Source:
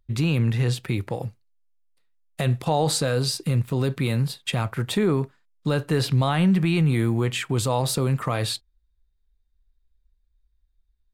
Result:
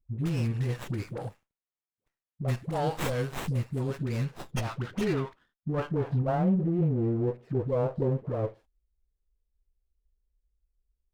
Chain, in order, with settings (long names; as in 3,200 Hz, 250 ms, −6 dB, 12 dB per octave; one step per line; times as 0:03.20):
low-pass filter sweep 9,600 Hz → 520 Hz, 0:03.79–0:06.49
all-pass dispersion highs, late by 96 ms, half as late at 550 Hz
windowed peak hold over 9 samples
level −7 dB